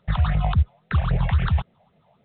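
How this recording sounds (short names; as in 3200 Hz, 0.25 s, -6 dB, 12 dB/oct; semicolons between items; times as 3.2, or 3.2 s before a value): a buzz of ramps at a fixed pitch in blocks of 8 samples; phasing stages 6, 3.7 Hz, lowest notch 330–1100 Hz; A-law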